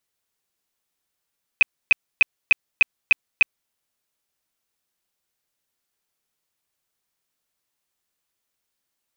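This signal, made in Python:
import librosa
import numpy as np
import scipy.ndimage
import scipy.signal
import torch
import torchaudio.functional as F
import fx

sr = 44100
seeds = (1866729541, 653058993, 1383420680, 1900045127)

y = fx.tone_burst(sr, hz=2520.0, cycles=39, every_s=0.3, bursts=7, level_db=-8.5)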